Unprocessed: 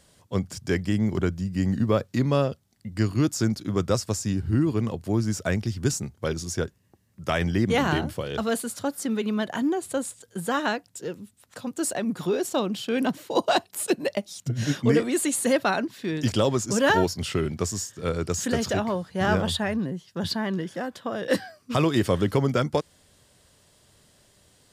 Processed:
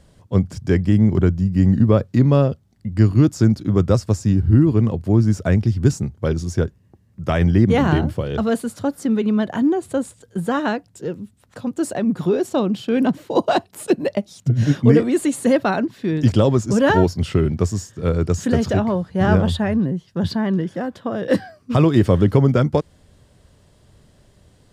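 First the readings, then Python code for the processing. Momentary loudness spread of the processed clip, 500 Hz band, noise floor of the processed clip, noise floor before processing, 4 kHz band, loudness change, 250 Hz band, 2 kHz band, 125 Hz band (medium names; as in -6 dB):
10 LU, +5.5 dB, -56 dBFS, -63 dBFS, -1.5 dB, +7.5 dB, +8.0 dB, +1.0 dB, +10.5 dB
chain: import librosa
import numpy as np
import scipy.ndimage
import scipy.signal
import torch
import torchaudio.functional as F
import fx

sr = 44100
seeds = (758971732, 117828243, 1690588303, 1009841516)

y = fx.tilt_eq(x, sr, slope=-2.5)
y = F.gain(torch.from_numpy(y), 3.0).numpy()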